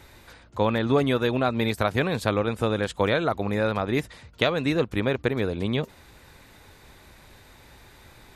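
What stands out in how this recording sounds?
noise floor -52 dBFS; spectral tilt -5.0 dB/oct

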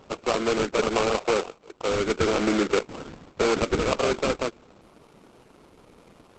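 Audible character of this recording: aliases and images of a low sample rate 1800 Hz, jitter 20%; Opus

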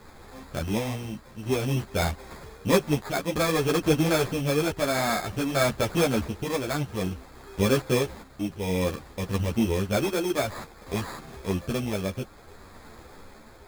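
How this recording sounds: a quantiser's noise floor 8-bit, dither triangular; tremolo triangle 0.56 Hz, depth 55%; aliases and images of a low sample rate 2900 Hz, jitter 0%; a shimmering, thickened sound

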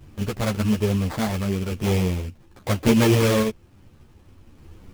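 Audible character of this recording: random-step tremolo; aliases and images of a low sample rate 2800 Hz, jitter 20%; a shimmering, thickened sound

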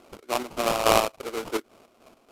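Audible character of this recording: aliases and images of a low sample rate 1800 Hz, jitter 20%; chopped level 3.5 Hz, depth 60%, duty 50%; Vorbis

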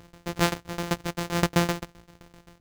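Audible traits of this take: a buzz of ramps at a fixed pitch in blocks of 256 samples; tremolo saw down 7.7 Hz, depth 95%; Nellymoser

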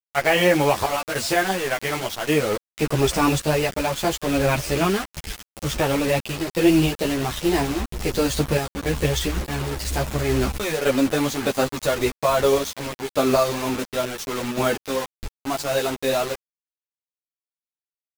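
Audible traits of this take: random-step tremolo, depth 65%; a quantiser's noise floor 6-bit, dither none; a shimmering, thickened sound

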